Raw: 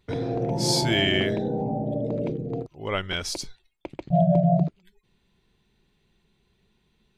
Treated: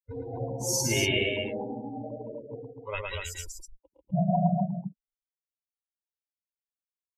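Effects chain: per-bin expansion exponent 3; formant shift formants +4 st; loudspeakers at several distances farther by 38 m -3 dB, 84 m -5 dB

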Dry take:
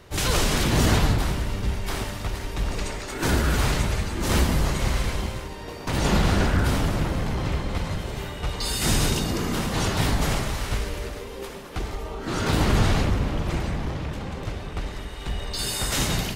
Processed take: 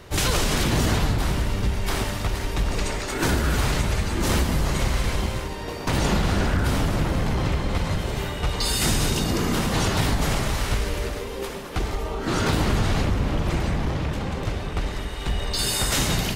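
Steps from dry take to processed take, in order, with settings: compressor 4:1, threshold -23 dBFS, peak gain reduction 7.5 dB; gain +4.5 dB

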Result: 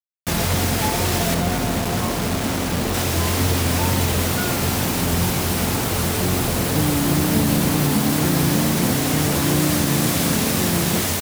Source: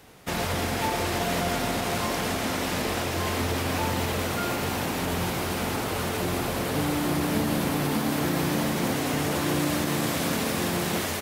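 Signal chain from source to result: 1.34–2.94 high shelf 2300 Hz -10.5 dB; vibrato 2.1 Hz 54 cents; tone controls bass +7 dB, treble +6 dB; bit-crush 5-bit; gain +3.5 dB

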